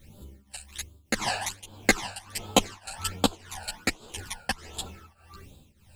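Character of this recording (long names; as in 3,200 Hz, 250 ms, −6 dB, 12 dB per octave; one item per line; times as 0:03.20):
a quantiser's noise floor 12 bits, dither triangular
phaser sweep stages 12, 1.3 Hz, lowest notch 340–2,000 Hz
tremolo triangle 1.7 Hz, depth 90%
a shimmering, thickened sound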